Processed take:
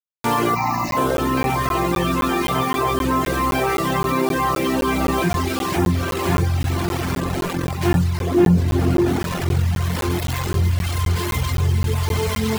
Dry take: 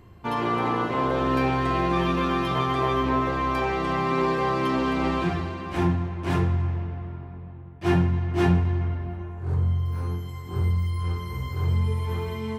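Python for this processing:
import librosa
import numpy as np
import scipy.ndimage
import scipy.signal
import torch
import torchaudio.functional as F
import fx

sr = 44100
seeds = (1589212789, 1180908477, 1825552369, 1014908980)

p1 = fx.high_shelf(x, sr, hz=3900.0, db=-11.0, at=(5.28, 6.08))
p2 = fx.quant_dither(p1, sr, seeds[0], bits=6, dither='none')
p3 = fx.fixed_phaser(p2, sr, hz=2200.0, stages=8, at=(0.54, 0.96), fade=0.02)
p4 = fx.rider(p3, sr, range_db=3, speed_s=0.5)
p5 = p4 + fx.echo_diffused(p4, sr, ms=1127, feedback_pct=55, wet_db=-9.5, dry=0)
p6 = fx.dereverb_blind(p5, sr, rt60_s=1.2)
p7 = fx.peak_eq(p6, sr, hz=290.0, db=12.0, octaves=2.4, at=(8.19, 9.19))
p8 = fx.buffer_crackle(p7, sr, first_s=0.91, period_s=0.26, block=512, kind='zero')
y = fx.env_flatten(p8, sr, amount_pct=50)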